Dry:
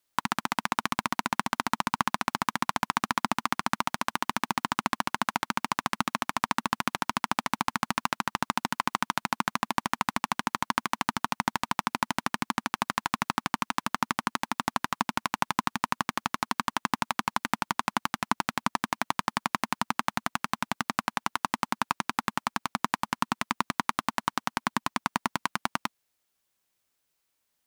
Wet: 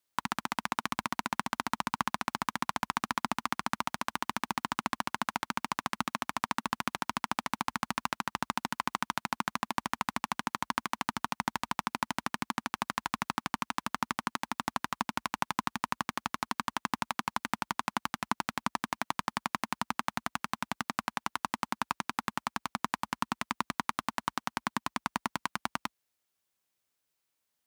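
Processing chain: HPF 46 Hz 24 dB/oct; gain -4.5 dB

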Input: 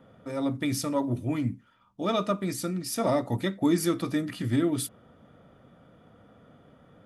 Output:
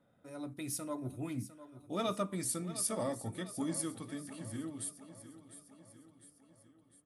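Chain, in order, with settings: Doppler pass-by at 2.11, 22 m/s, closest 20 m; bell 9500 Hz +14 dB 0.6 oct; feedback echo 0.703 s, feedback 54%, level -14 dB; gain -8 dB

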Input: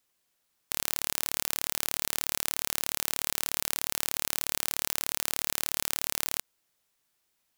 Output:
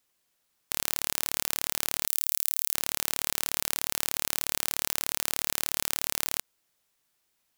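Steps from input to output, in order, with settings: 2.07–2.74 pre-emphasis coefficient 0.8; gain +1 dB

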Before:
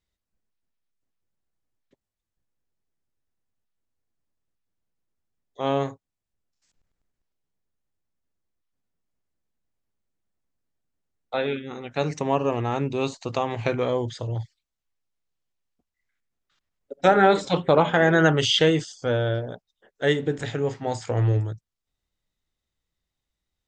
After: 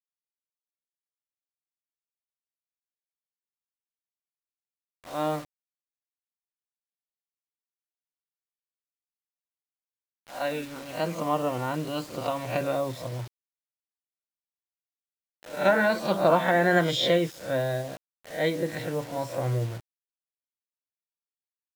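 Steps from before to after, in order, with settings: spectral swells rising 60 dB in 0.41 s; LPF 2700 Hz 6 dB/oct; low shelf 120 Hz -8 dB; notch comb 390 Hz; vibrato 1.1 Hz 42 cents; bit-crush 7-bit; speed mistake 44.1 kHz file played as 48 kHz; gain -2 dB

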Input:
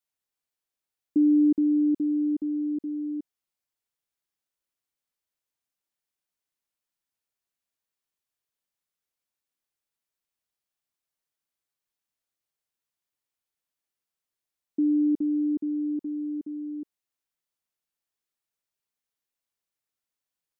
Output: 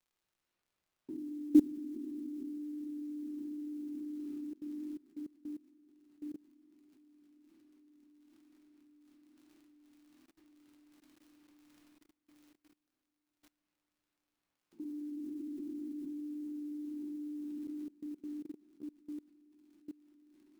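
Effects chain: stepped spectrum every 0.1 s; bell 380 Hz -7.5 dB 1.9 oct; gate -43 dBFS, range -51 dB; diffused feedback echo 0.657 s, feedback 45%, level -13.5 dB; reverse; upward compressor, threshold -41 dBFS; reverse; crackle 63/s -55 dBFS; shoebox room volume 220 m³, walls hard, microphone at 0.96 m; modulation noise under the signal 32 dB; level quantiser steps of 23 dB; gain +4.5 dB

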